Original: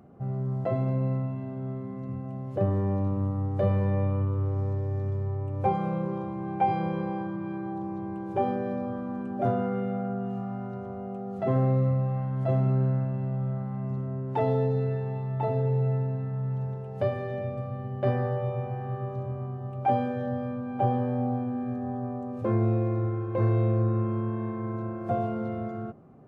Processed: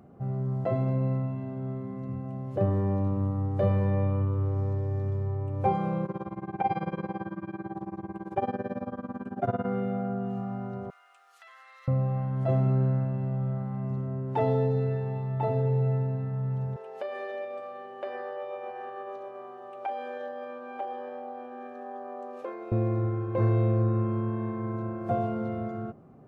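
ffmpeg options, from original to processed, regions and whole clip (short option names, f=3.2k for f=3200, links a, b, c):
-filter_complex "[0:a]asettb=1/sr,asplit=3[a][b][c];[a]atrim=end=6.054[d];[b]atrim=start=6.05:end=9.66,asetpts=PTS-STARTPTS,afade=t=in:d=0.004:c=qsin,afade=t=out:st=3.606:d=0.004:c=qsin,equalizer=f=1.5k:t=o:w=1.4:g=4.5,tremolo=f=18:d=0.93[e];[c]atrim=start=9.656[f];[d][e]acrossfade=d=0.004:c1=hsin:c2=qsin[g];[g][f]acrossfade=d=0.004:c1=qsin:c2=hsin,asettb=1/sr,asplit=3[h][i][j];[h]atrim=end=10.904[k];[i]atrim=start=10.9:end=11.88,asetpts=PTS-STARTPTS,afade=t=in:d=0.004:c=qsin,afade=t=out:st=0.976:d=0.004:c=qsin,highpass=f=1.4k:w=0.5412,highpass=f=1.4k:w=1.3066,highshelf=f=2.5k:g=10,acompressor=threshold=-48dB:ratio=10:attack=3.2:release=140:knee=1:detection=peak[l];[j]atrim=start=11.876[m];[k][l]acrossfade=d=0.004:c1=hsin:c2=qsin[n];[n][m]acrossfade=d=0.004:c1=qsin:c2=hsin,asettb=1/sr,asplit=3[o][p][q];[o]atrim=end=16.764[r];[p]atrim=start=16.76:end=22.72,asetpts=PTS-STARTPTS,afade=t=in:d=0.004:c=qsin,afade=t=out:st=5.956:d=0.004:c=qsin,equalizer=f=2.8k:t=o:w=2.7:g=5,acompressor=threshold=-29dB:ratio=6:attack=3.2:release=140:knee=1:detection=peak,highpass=f=370:w=0.5412,highpass=f=370:w=1.3066[s];[q]atrim=start=22.716[t];[r][s]acrossfade=d=0.004:c1=hsin:c2=qsin[u];[u][t]acrossfade=d=0.004:c1=qsin:c2=hsin"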